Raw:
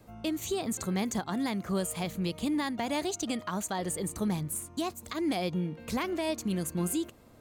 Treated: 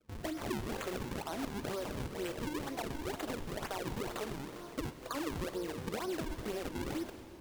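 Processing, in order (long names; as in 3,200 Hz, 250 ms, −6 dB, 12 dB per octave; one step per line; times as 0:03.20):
0:04.26–0:06.31: Chebyshev low-pass filter 1,700 Hz, order 8
noise gate −51 dBFS, range −22 dB
high-pass filter 390 Hz 24 dB per octave
spectral tilt −1.5 dB per octave
brickwall limiter −32.5 dBFS, peak gain reduction 11.5 dB
downward compressor 4 to 1, threshold −45 dBFS, peak gain reduction 8.5 dB
flanger 0.67 Hz, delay 3.5 ms, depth 9.9 ms, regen −71%
sample-and-hold swept by an LFO 41×, swing 160% 2.1 Hz
convolution reverb RT60 3.5 s, pre-delay 89 ms, DRR 10.5 dB
wow of a warped record 78 rpm, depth 160 cents
level +13 dB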